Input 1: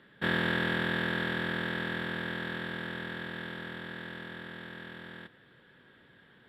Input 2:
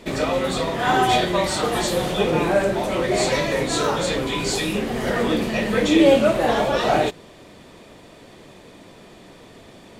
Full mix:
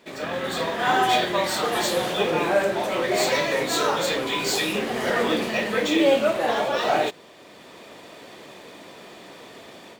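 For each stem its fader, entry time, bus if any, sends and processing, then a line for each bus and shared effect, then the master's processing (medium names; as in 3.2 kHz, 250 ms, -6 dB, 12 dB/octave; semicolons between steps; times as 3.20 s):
-6.0 dB, 0.00 s, no send, none
-7.5 dB, 0.00 s, no send, high-pass 470 Hz 6 dB/octave; level rider gain up to 12.5 dB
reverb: none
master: decimation joined by straight lines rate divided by 2×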